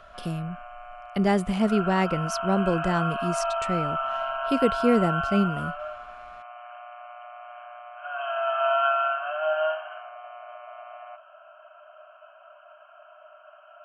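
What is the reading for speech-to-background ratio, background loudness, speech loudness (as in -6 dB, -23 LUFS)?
2.0 dB, -28.0 LUFS, -26.0 LUFS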